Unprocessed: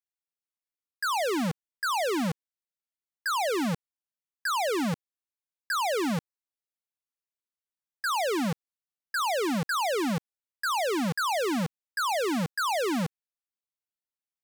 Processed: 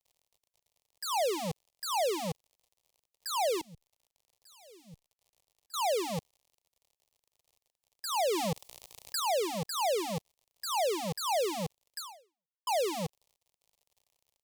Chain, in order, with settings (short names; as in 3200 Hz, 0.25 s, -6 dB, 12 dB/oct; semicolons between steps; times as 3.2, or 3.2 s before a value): 3.61–5.74 passive tone stack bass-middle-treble 10-0-1; crackle 73/s -51 dBFS; fixed phaser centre 620 Hz, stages 4; 8.19–9.2 fast leveller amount 50%; 11.98–12.67 fade out exponential